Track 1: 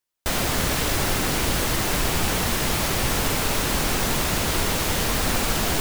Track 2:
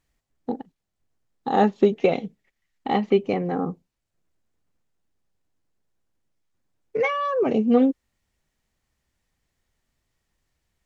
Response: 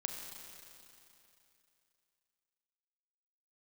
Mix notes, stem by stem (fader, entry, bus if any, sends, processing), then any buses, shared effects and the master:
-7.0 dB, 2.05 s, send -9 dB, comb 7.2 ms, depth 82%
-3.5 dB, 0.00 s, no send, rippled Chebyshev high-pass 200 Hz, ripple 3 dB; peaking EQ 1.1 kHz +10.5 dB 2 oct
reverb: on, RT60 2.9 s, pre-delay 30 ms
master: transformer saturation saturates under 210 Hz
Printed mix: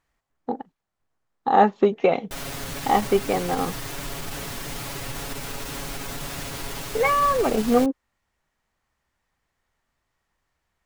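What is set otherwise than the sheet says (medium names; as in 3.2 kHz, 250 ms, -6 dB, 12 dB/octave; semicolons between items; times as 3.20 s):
stem 1 -7.0 dB -> -14.0 dB; stem 2: missing rippled Chebyshev high-pass 200 Hz, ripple 3 dB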